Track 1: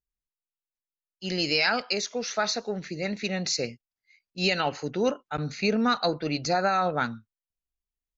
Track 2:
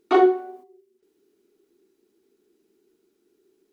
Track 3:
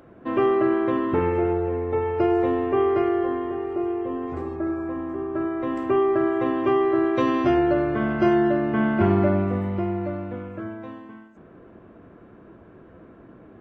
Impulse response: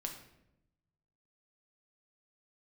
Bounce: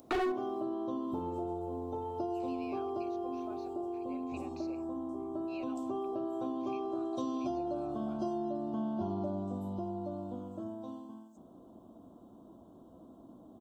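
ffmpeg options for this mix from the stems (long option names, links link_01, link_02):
-filter_complex "[0:a]asplit=3[link_01][link_02][link_03];[link_01]bandpass=frequency=730:width_type=q:width=8,volume=0dB[link_04];[link_02]bandpass=frequency=1090:width_type=q:width=8,volume=-6dB[link_05];[link_03]bandpass=frequency=2440:width_type=q:width=8,volume=-9dB[link_06];[link_04][link_05][link_06]amix=inputs=3:normalize=0,acompressor=threshold=-41dB:ratio=6,adelay=1100,volume=-4.5dB[link_07];[1:a]volume=20dB,asoftclip=hard,volume=-20dB,volume=1dB[link_08];[2:a]firequalizer=gain_entry='entry(150,0);entry(250,10);entry(420,-2);entry(660,8);entry(1000,5);entry(1900,-28);entry(3100,-4);entry(4500,-10);entry(7700,-4)':delay=0.05:min_phase=1,aexciter=amount=8.8:drive=8.8:freq=3800,volume=-12dB[link_09];[link_07][link_08][link_09]amix=inputs=3:normalize=0,acompressor=threshold=-36dB:ratio=2.5"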